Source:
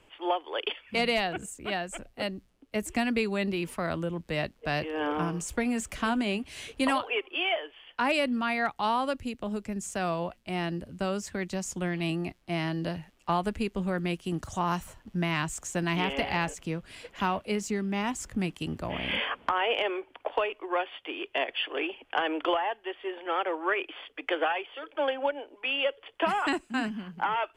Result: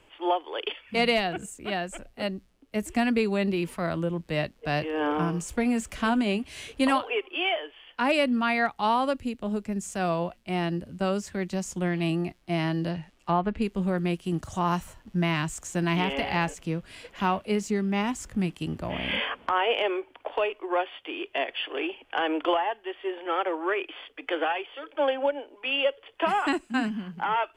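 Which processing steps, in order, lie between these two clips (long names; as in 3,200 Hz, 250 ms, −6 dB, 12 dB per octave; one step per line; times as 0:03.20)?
harmonic and percussive parts rebalanced percussive −6 dB
0:12.89–0:13.62: treble cut that deepens with the level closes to 2,300 Hz, closed at −25.5 dBFS
level +4 dB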